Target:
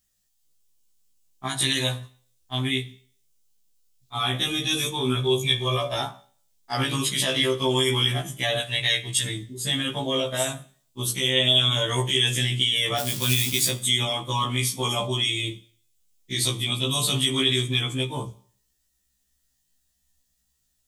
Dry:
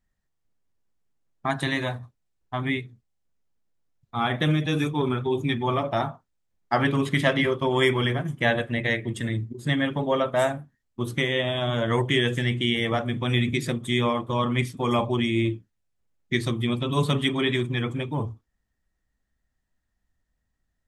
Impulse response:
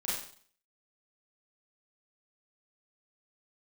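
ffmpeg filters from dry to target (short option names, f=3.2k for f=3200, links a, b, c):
-filter_complex "[0:a]asettb=1/sr,asplit=3[a][b][c];[a]atrim=end=5.164[d];[b]atrim=start=5.16:end=5.97,asetpts=PTS-STARTPTS,afade=t=in:d=0.004:c=qsin,afade=t=out:st=0.806:d=0.004:c=qsin,aecho=1:1:1.8:0.68,atrim=end_sample=35721[e];[c]atrim=start=5.966[f];[d][e]acrossfade=d=0.004:c1=hsin:c2=qsin[g];[g][f]acrossfade=d=0.004:c1=qsin:c2=hsin,asplit=3[h][i][j];[h]afade=t=out:st=12.98:d=0.02[k];[i]acrusher=bits=4:mode=log:mix=0:aa=0.000001,afade=t=in:st=12.98:d=0.02,afade=t=out:st=13.68:d=0.02[l];[j]afade=t=in:st=13.68:d=0.02[m];[k][l][m]amix=inputs=3:normalize=0,highshelf=f=2.9k:g=5.5,alimiter=limit=-15.5dB:level=0:latency=1:release=34,asettb=1/sr,asplit=3[n][o][p];[n]atrim=end=8.604[q];[o]atrim=start=8.6:end=9.26,asetpts=PTS-STARTPTS,afade=t=in:d=0.004:c=qsin,afade=t=out:st=0.656:d=0.004:c=qsin,equalizer=f=250:t=o:w=1:g=-9,equalizer=f=500:t=o:w=1:g=-6,equalizer=f=1k:t=o:w=1:g=5,equalizer=f=4k:t=o:w=1:g=4[r];[p]atrim=start=9.256[s];[q][r]acrossfade=d=0.004:c1=hsin:c2=qsin[t];[t][s]acrossfade=d=0.004:c1=qsin:c2=hsin,aexciter=amount=4.9:drive=2.8:freq=2.7k,asplit=2[u][v];[1:a]atrim=start_sample=2205[w];[v][w]afir=irnorm=-1:irlink=0,volume=-20dB[x];[u][x]amix=inputs=2:normalize=0,afftfilt=real='re*1.73*eq(mod(b,3),0)':imag='im*1.73*eq(mod(b,3),0)':win_size=2048:overlap=0.75"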